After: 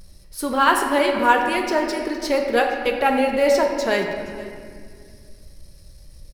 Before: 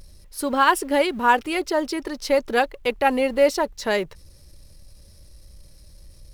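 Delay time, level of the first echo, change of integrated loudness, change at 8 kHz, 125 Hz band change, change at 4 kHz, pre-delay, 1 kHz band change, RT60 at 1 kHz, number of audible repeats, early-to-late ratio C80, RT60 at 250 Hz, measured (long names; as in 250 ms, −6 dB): 474 ms, −19.5 dB, +1.5 dB, +1.0 dB, can't be measured, +1.5 dB, 4 ms, +2.0 dB, 1.9 s, 1, 5.5 dB, 2.9 s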